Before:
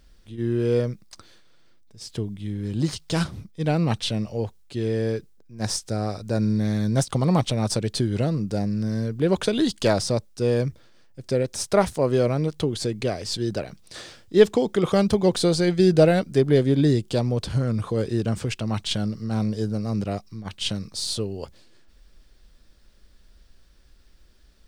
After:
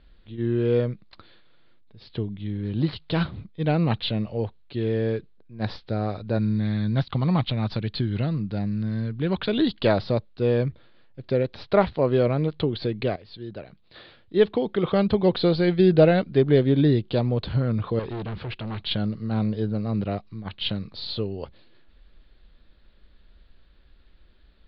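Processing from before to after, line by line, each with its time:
6.38–9.49 s: peaking EQ 490 Hz -8 dB 1.4 oct
13.16–15.42 s: fade in, from -14 dB
17.99–18.86 s: hard clipper -29 dBFS
whole clip: steep low-pass 4.3 kHz 72 dB/octave

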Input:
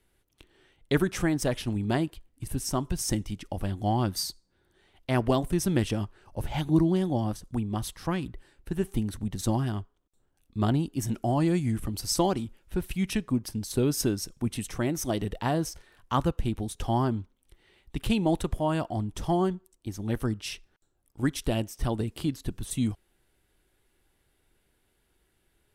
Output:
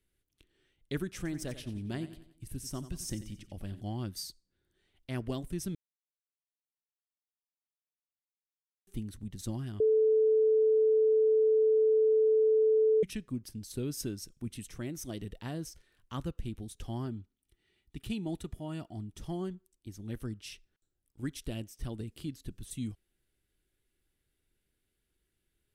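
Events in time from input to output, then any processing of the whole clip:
1.16–3.81 s: feedback delay 90 ms, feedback 44%, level -13 dB
5.75–8.87 s: mute
9.80–13.03 s: bleep 437 Hz -9.5 dBFS
17.06–19.21 s: comb of notches 530 Hz
whole clip: peaking EQ 860 Hz -10 dB 1.3 oct; trim -9 dB

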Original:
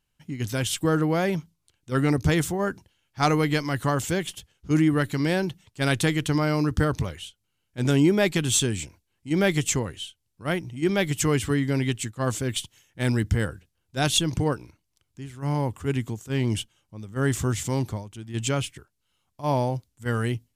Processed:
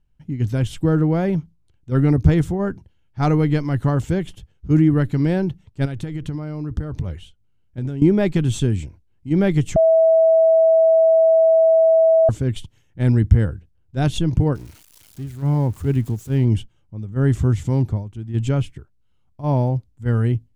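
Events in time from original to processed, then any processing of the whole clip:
5.85–8.02 s: compression 16:1, threshold -28 dBFS
9.76–12.29 s: bleep 650 Hz -11 dBFS
14.55–16.45 s: zero-crossing glitches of -27 dBFS
whole clip: tilt EQ -3.5 dB/octave; band-stop 1.1 kHz, Q 26; trim -1.5 dB

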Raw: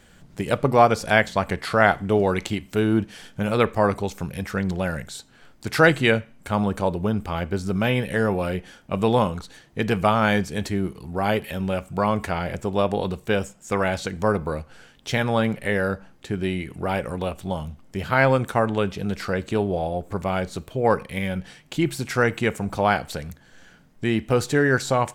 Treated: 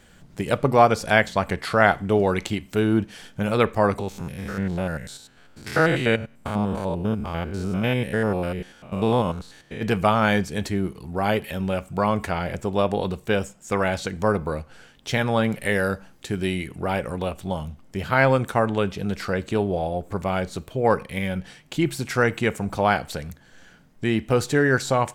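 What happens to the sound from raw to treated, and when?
3.99–9.83 s: spectrogram pixelated in time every 100 ms
15.52–16.68 s: treble shelf 3.9 kHz +8.5 dB

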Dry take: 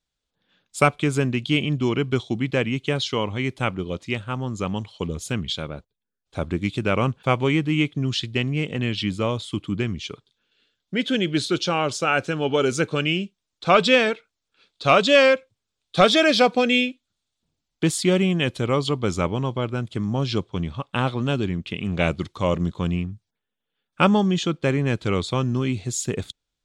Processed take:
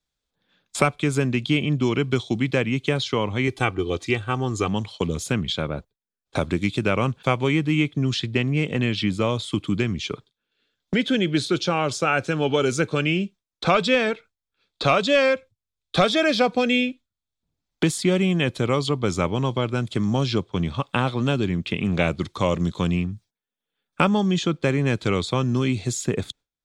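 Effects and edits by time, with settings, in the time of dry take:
3.47–4.68 s: comb 2.6 ms
whole clip: band-stop 2.9 kHz, Q 16; gate with hold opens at -36 dBFS; three bands compressed up and down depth 70%

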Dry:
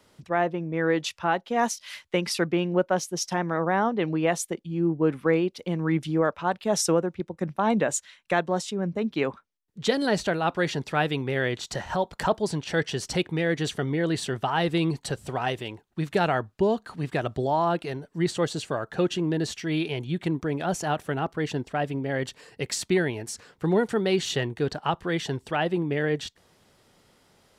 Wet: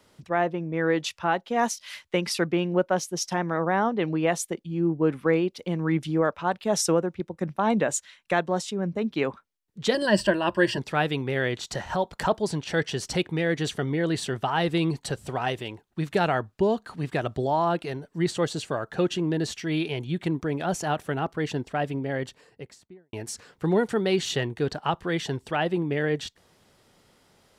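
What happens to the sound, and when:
9.94–10.78 s: rippled EQ curve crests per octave 1.3, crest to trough 14 dB
21.90–23.13 s: studio fade out

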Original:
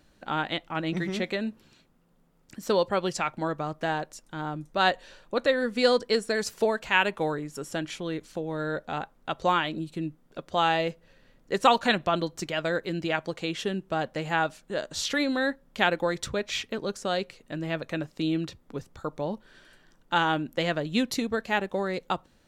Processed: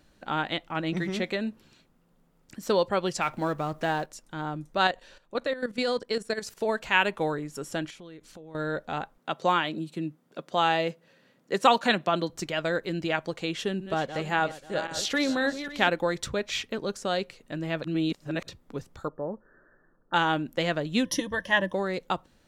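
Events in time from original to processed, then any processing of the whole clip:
3.21–4.06 s: companding laws mixed up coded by mu
4.87–6.69 s: level held to a coarse grid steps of 13 dB
7.90–8.55 s: compression 3:1, threshold -47 dBFS
9.18–12.30 s: high-pass 140 Hz 24 dB/octave
13.53–15.89 s: backward echo that repeats 269 ms, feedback 51%, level -10 dB
17.84–18.48 s: reverse
19.08–20.14 s: rippled Chebyshev low-pass 1.8 kHz, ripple 6 dB
21.05–21.73 s: rippled EQ curve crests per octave 1.2, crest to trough 17 dB

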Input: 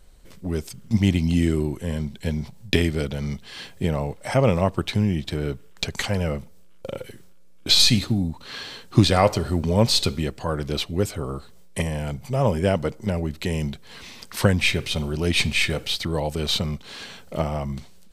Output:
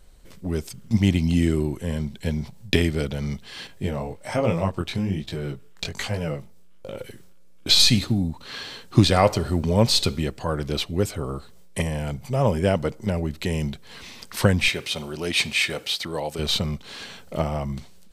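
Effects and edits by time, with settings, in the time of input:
3.67–6.99 s: chorus 1.2 Hz, delay 18 ms, depth 5.6 ms
14.68–16.39 s: high-pass 400 Hz 6 dB/octave

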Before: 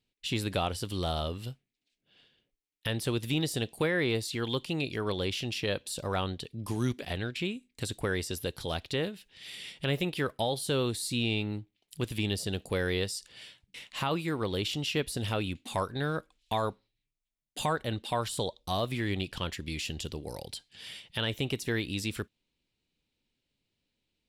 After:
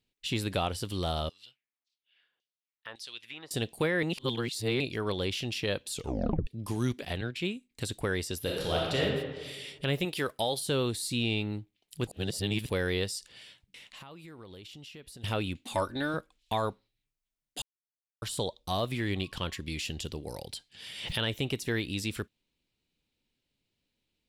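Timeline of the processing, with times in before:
1.29–3.51 s: LFO band-pass saw down 1.8 Hz 940–6300 Hz
4.03–4.80 s: reverse
5.91 s: tape stop 0.56 s
7.21–7.71 s: three bands expanded up and down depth 70%
8.41–9.02 s: reverb throw, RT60 1.4 s, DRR -3.5 dB
10.05–10.60 s: tone controls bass -5 dB, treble +6 dB
12.07–12.70 s: reverse
13.25–15.24 s: compression, threshold -46 dBFS
15.74–16.14 s: comb 3.4 ms
17.62–18.22 s: mute
19.14–19.60 s: whistle 1.1 kHz -62 dBFS
20.82–21.38 s: swell ahead of each attack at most 59 dB/s

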